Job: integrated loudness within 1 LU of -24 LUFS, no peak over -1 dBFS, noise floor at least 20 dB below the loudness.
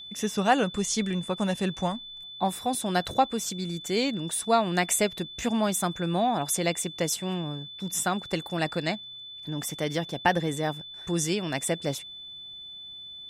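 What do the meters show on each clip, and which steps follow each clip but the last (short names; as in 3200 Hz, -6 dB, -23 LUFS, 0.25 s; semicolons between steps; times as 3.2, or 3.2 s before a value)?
steady tone 3500 Hz; tone level -40 dBFS; loudness -28.0 LUFS; peak -8.5 dBFS; loudness target -24.0 LUFS
-> notch 3500 Hz, Q 30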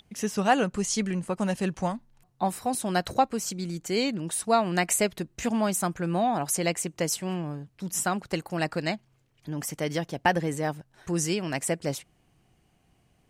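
steady tone none; loudness -28.0 LUFS; peak -8.0 dBFS; loudness target -24.0 LUFS
-> gain +4 dB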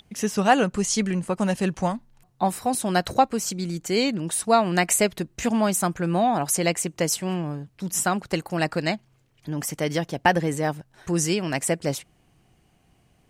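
loudness -24.0 LUFS; peak -4.5 dBFS; noise floor -63 dBFS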